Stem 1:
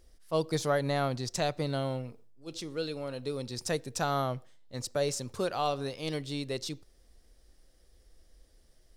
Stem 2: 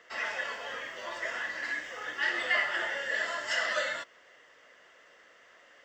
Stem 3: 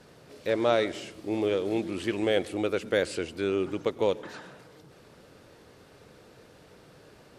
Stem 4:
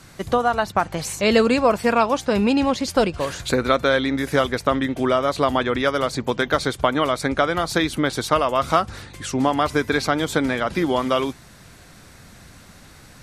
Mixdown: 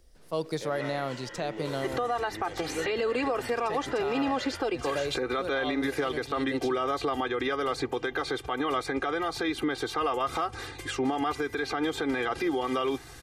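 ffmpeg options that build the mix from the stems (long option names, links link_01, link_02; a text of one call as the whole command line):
ffmpeg -i stem1.wav -i stem2.wav -i stem3.wav -i stem4.wav -filter_complex "[0:a]volume=0.5dB[link_01];[1:a]aecho=1:1:2.1:0.98,adelay=600,volume=-10dB[link_02];[2:a]acompressor=threshold=-35dB:ratio=2,adelay=150,volume=-6.5dB[link_03];[3:a]aecho=1:1:2.5:0.97,adelay=1650,volume=-2dB[link_04];[link_01][link_02][link_03][link_04]amix=inputs=4:normalize=0,acrossover=split=170|3600[link_05][link_06][link_07];[link_05]acompressor=threshold=-47dB:ratio=4[link_08];[link_06]acompressor=threshold=-18dB:ratio=4[link_09];[link_07]acompressor=threshold=-46dB:ratio=4[link_10];[link_08][link_09][link_10]amix=inputs=3:normalize=0,alimiter=limit=-20dB:level=0:latency=1:release=87" out.wav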